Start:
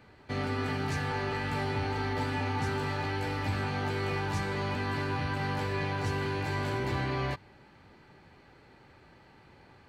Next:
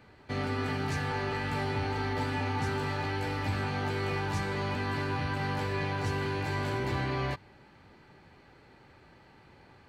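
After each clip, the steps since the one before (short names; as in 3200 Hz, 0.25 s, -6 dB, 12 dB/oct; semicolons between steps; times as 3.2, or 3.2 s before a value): nothing audible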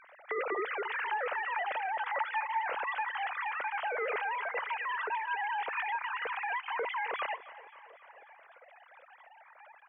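sine-wave speech; compressor 1.5:1, threshold -36 dBFS, peak gain reduction 5 dB; feedback echo 0.267 s, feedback 58%, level -17.5 dB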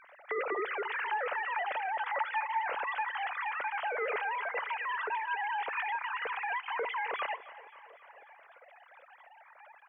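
reverb, pre-delay 7 ms, DRR 19.5 dB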